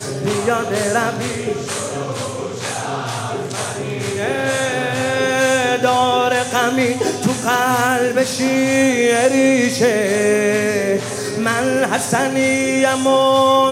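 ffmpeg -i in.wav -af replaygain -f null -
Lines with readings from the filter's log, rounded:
track_gain = -2.3 dB
track_peak = 0.590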